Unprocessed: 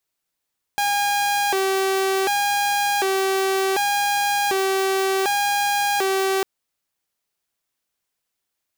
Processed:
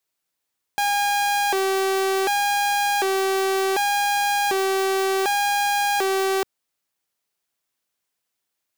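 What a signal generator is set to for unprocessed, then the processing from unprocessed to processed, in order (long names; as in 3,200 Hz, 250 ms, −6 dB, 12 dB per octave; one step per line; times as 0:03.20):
siren hi-lo 385–814 Hz 0.67 per second saw −16 dBFS 5.65 s
low-shelf EQ 69 Hz −9.5 dB
hard clipping −17.5 dBFS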